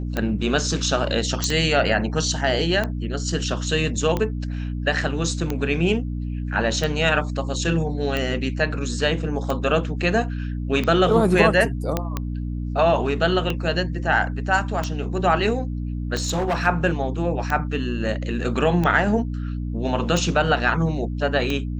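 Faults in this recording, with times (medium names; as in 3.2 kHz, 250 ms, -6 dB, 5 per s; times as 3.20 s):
hum 60 Hz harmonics 5 -27 dBFS
tick 45 rpm -11 dBFS
1.44 s: pop -7 dBFS
11.97 s: pop -8 dBFS
16.14–16.67 s: clipped -18.5 dBFS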